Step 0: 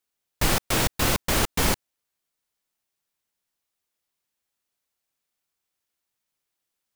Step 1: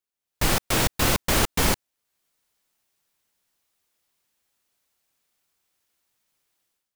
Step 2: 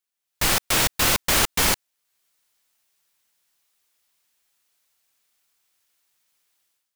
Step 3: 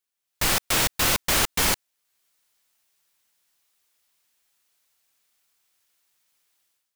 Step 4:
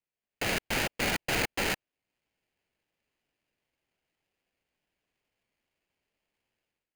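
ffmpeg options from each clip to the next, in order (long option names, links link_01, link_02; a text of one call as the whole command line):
ffmpeg -i in.wav -af "dynaudnorm=framelen=120:gausssize=5:maxgain=15dB,volume=-7.5dB" out.wav
ffmpeg -i in.wav -af "tiltshelf=frequency=770:gain=-4.5" out.wav
ffmpeg -i in.wav -af "asoftclip=type=tanh:threshold=-14dB" out.wav
ffmpeg -i in.wav -af "highpass=frequency=350:width_type=q:width=0.5412,highpass=frequency=350:width_type=q:width=1.307,lowpass=frequency=2100:width_type=q:width=0.5176,lowpass=frequency=2100:width_type=q:width=0.7071,lowpass=frequency=2100:width_type=q:width=1.932,afreqshift=-200,lowshelf=frequency=250:gain=-9,aeval=exprs='val(0)*sgn(sin(2*PI*1100*n/s))':channel_layout=same" out.wav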